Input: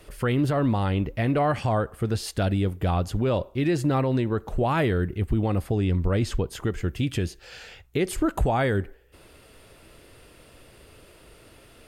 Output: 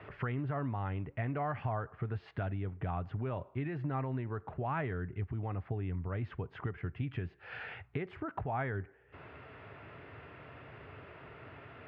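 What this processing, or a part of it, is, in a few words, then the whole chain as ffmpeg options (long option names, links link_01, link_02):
bass amplifier: -af "acompressor=threshold=-41dB:ratio=3,highpass=frequency=89:width=0.5412,highpass=frequency=89:width=1.3066,equalizer=frequency=210:width_type=q:width=4:gain=-9,equalizer=frequency=330:width_type=q:width=4:gain=-8,equalizer=frequency=520:width_type=q:width=4:gain=-9,lowpass=frequency=2200:width=0.5412,lowpass=frequency=2200:width=1.3066,volume=5.5dB"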